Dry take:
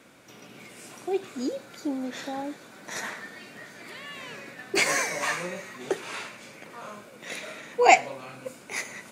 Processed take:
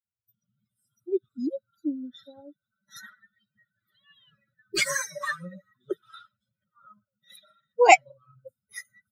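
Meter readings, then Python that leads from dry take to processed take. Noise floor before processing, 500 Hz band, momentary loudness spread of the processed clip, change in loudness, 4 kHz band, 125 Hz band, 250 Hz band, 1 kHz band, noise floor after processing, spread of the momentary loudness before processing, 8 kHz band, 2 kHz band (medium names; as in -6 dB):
-50 dBFS, +0.5 dB, 25 LU, +2.5 dB, -1.5 dB, -3.5 dB, -1.0 dB, +0.5 dB, under -85 dBFS, 21 LU, -1.0 dB, -1.0 dB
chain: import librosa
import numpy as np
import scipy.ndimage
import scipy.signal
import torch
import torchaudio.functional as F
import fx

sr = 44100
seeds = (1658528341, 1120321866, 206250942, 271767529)

y = fx.bin_expand(x, sr, power=3.0)
y = y * librosa.db_to_amplitude(4.5)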